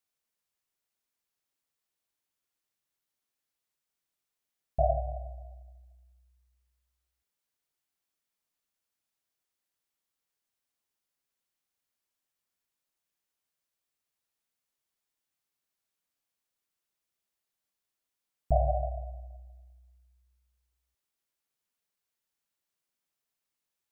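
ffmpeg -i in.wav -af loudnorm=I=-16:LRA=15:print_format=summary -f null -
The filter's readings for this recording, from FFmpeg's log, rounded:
Input Integrated:    -31.9 LUFS
Input True Peak:     -13.5 dBTP
Input LRA:            11.0 LU
Input Threshold:     -45.1 LUFS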